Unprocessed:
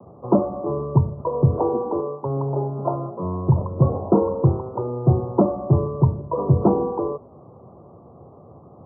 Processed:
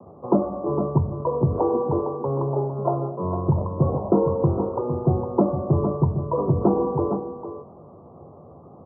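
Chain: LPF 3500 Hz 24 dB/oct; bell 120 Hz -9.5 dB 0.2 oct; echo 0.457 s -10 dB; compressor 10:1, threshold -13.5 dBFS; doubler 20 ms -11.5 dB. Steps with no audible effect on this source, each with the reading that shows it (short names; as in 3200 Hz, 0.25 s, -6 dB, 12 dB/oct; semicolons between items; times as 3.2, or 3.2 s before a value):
LPF 3500 Hz: input band ends at 1200 Hz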